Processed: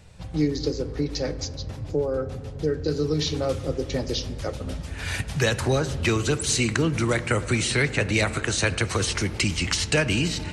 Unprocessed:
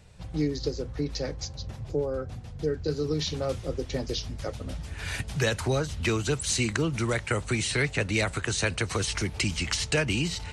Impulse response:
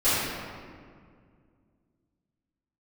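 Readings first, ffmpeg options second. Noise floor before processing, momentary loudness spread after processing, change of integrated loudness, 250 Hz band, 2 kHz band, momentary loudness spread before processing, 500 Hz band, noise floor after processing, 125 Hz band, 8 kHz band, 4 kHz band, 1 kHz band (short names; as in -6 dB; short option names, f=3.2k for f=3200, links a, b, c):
-41 dBFS, 9 LU, +4.0 dB, +4.5 dB, +4.0 dB, 10 LU, +4.0 dB, -36 dBFS, +4.0 dB, +3.5 dB, +3.5 dB, +4.0 dB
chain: -filter_complex "[0:a]asplit=2[a][b];[1:a]atrim=start_sample=2205,highshelf=f=3.7k:g=-10[c];[b][c]afir=irnorm=-1:irlink=0,volume=-27.5dB[d];[a][d]amix=inputs=2:normalize=0,volume=3.5dB"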